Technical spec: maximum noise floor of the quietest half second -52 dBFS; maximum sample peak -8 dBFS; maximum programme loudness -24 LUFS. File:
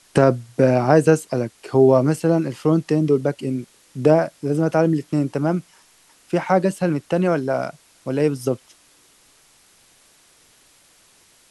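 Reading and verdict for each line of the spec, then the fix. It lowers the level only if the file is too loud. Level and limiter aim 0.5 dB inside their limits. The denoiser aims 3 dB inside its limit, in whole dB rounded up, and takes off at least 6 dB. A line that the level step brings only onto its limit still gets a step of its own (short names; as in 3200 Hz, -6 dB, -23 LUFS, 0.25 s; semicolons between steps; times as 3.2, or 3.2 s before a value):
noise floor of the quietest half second -55 dBFS: OK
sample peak -2.0 dBFS: fail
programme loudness -20.0 LUFS: fail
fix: gain -4.5 dB; limiter -8.5 dBFS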